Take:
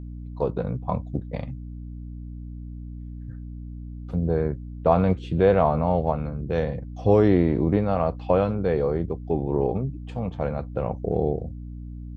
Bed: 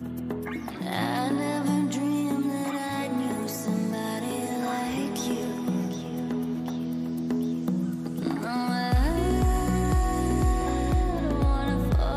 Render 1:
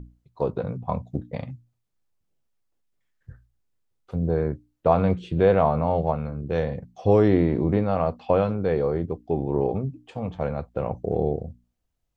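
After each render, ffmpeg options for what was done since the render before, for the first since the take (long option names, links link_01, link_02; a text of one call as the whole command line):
ffmpeg -i in.wav -af "bandreject=frequency=60:width_type=h:width=6,bandreject=frequency=120:width_type=h:width=6,bandreject=frequency=180:width_type=h:width=6,bandreject=frequency=240:width_type=h:width=6,bandreject=frequency=300:width_type=h:width=6" out.wav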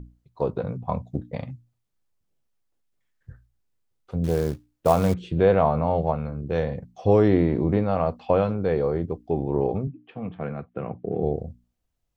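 ffmpeg -i in.wav -filter_complex "[0:a]asettb=1/sr,asplit=3[link_01][link_02][link_03];[link_01]atrim=end=4.244[link_04];[link_02]atrim=start=4.24:end=5.14,asetpts=PTS-STARTPTS,afade=type=in:duration=0.004:curve=qsin,afade=type=out:start_time=0.896:duration=0.004:curve=qsin,acrusher=bits=5:mode=log:mix=0:aa=0.000001[link_05];[link_03]atrim=start=5.136[link_06];[link_04][link_05]acrossfade=duration=0.004:curve1=hsin:curve2=qsin[link_07];[link_07][link_06]acrossfade=duration=0.004:curve1=qsin:curve2=hsin,asettb=1/sr,asplit=3[link_08][link_09][link_10];[link_08]atrim=end=9.874[link_11];[link_09]atrim=start=9.87:end=11.23,asetpts=PTS-STARTPTS,afade=type=in:duration=0.004:curve=qsin,afade=type=out:start_time=1.356:duration=0.004:curve=qsin,highpass=frequency=110:width=0.5412,highpass=frequency=110:width=1.3066,equalizer=frequency=120:width_type=q:width=4:gain=-4,equalizer=frequency=560:width_type=q:width=4:gain=-9,equalizer=frequency=890:width_type=q:width=4:gain=-9,lowpass=frequency=2900:width=0.5412,lowpass=frequency=2900:width=1.3066[link_12];[link_10]atrim=start=11.226[link_13];[link_11][link_12]acrossfade=duration=0.004:curve1=hsin:curve2=qsin[link_14];[link_14][link_13]acrossfade=duration=0.004:curve1=qsin:curve2=hsin" out.wav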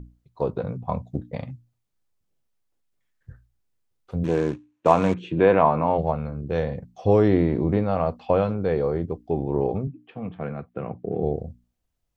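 ffmpeg -i in.wav -filter_complex "[0:a]asplit=3[link_01][link_02][link_03];[link_01]afade=type=out:start_time=4.23:duration=0.02[link_04];[link_02]highpass=130,equalizer=frequency=310:width_type=q:width=4:gain=8,equalizer=frequency=1000:width_type=q:width=4:gain=8,equalizer=frequency=1700:width_type=q:width=4:gain=5,equalizer=frequency=2500:width_type=q:width=4:gain=7,equalizer=frequency=4900:width_type=q:width=4:gain=-9,lowpass=frequency=6900:width=0.5412,lowpass=frequency=6900:width=1.3066,afade=type=in:start_time=4.23:duration=0.02,afade=type=out:start_time=5.97:duration=0.02[link_05];[link_03]afade=type=in:start_time=5.97:duration=0.02[link_06];[link_04][link_05][link_06]amix=inputs=3:normalize=0" out.wav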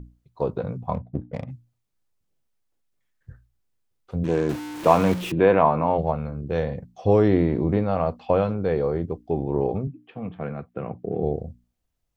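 ffmpeg -i in.wav -filter_complex "[0:a]asplit=3[link_01][link_02][link_03];[link_01]afade=type=out:start_time=0.93:duration=0.02[link_04];[link_02]adynamicsmooth=sensitivity=5.5:basefreq=980,afade=type=in:start_time=0.93:duration=0.02,afade=type=out:start_time=1.47:duration=0.02[link_05];[link_03]afade=type=in:start_time=1.47:duration=0.02[link_06];[link_04][link_05][link_06]amix=inputs=3:normalize=0,asettb=1/sr,asplit=3[link_07][link_08][link_09];[link_07]atrim=end=4.494[link_10];[link_08]atrim=start=4.49:end=5.32,asetpts=PTS-STARTPTS,afade=type=in:duration=0.004:curve=qsin,afade=type=out:start_time=0.826:duration=0.004:curve=qsin,aeval=exprs='val(0)+0.5*0.0376*sgn(val(0))':channel_layout=same[link_11];[link_09]atrim=start=5.316[link_12];[link_10][link_11]acrossfade=duration=0.004:curve1=hsin:curve2=qsin[link_13];[link_13][link_12]acrossfade=duration=0.004:curve1=qsin:curve2=hsin" out.wav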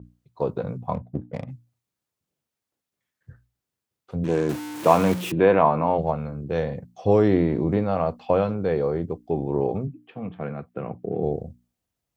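ffmpeg -i in.wav -af "highpass=90,adynamicequalizer=threshold=0.00355:dfrequency=6400:dqfactor=0.7:tfrequency=6400:tqfactor=0.7:attack=5:release=100:ratio=0.375:range=2.5:mode=boostabove:tftype=highshelf" out.wav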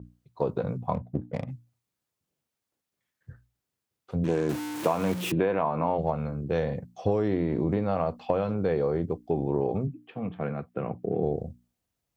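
ffmpeg -i in.wav -af "acompressor=threshold=-21dB:ratio=12" out.wav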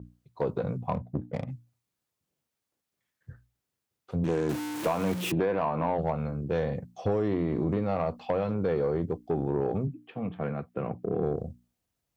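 ffmpeg -i in.wav -af "asoftclip=type=tanh:threshold=-18dB" out.wav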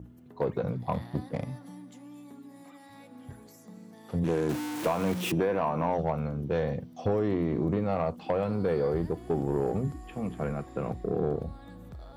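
ffmpeg -i in.wav -i bed.wav -filter_complex "[1:a]volume=-21dB[link_01];[0:a][link_01]amix=inputs=2:normalize=0" out.wav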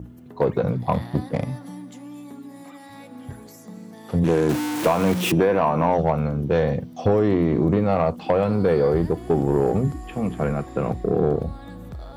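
ffmpeg -i in.wav -af "volume=8.5dB" out.wav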